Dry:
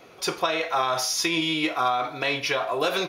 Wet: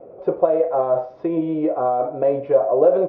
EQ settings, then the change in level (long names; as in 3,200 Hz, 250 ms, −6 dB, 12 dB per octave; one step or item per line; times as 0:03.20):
low-pass with resonance 560 Hz, resonance Q 4.2
high-frequency loss of the air 200 metres
+3.5 dB